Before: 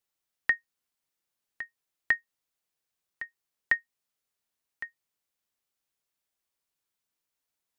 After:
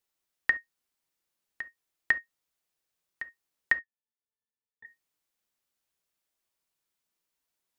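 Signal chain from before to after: 3.77–4.85 s: pitch-class resonator A, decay 0.19 s; on a send: reverberation, pre-delay 3 ms, DRR 11 dB; on the sum: trim +1 dB

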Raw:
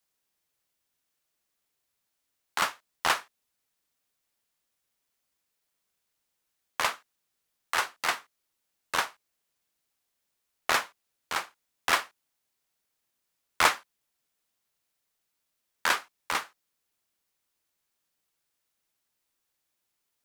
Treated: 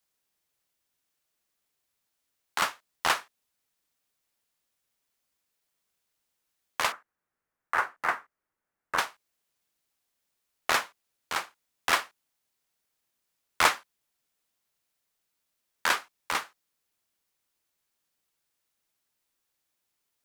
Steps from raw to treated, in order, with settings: 6.92–8.98 s: resonant high shelf 2.4 kHz -12.5 dB, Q 1.5

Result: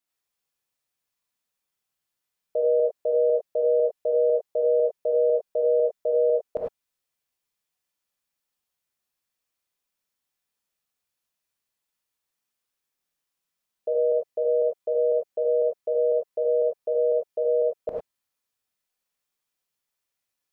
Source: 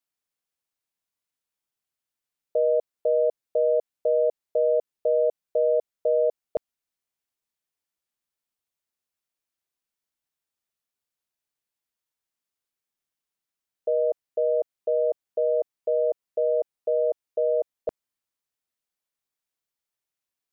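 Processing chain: in parallel at +2.5 dB: level held to a coarse grid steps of 19 dB; on the sum: gated-style reverb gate 120 ms rising, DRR -2.5 dB; trim -4 dB

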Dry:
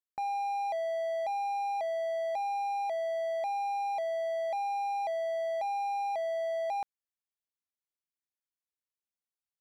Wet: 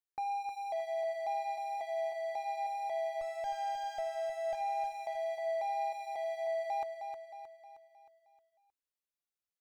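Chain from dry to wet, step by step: 3.21–4.55 s: comb filter that takes the minimum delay 1.4 ms; flange 2 Hz, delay 1.5 ms, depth 1.4 ms, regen -36%; feedback delay 312 ms, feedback 49%, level -7 dB

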